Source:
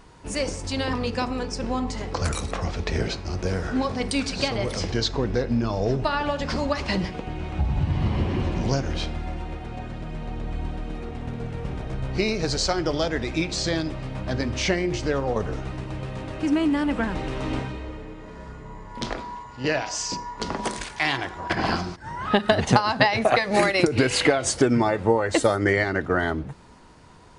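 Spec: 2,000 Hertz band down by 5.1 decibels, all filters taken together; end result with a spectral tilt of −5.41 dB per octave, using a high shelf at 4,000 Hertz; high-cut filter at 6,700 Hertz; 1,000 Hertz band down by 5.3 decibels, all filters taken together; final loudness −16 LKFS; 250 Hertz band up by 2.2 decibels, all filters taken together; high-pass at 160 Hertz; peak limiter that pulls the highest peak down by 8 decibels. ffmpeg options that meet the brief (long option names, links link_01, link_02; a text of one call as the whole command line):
ffmpeg -i in.wav -af "highpass=160,lowpass=6700,equalizer=frequency=250:width_type=o:gain=4,equalizer=frequency=1000:width_type=o:gain=-6.5,equalizer=frequency=2000:width_type=o:gain=-3.5,highshelf=frequency=4000:gain=-3.5,volume=11.5dB,alimiter=limit=-1.5dB:level=0:latency=1" out.wav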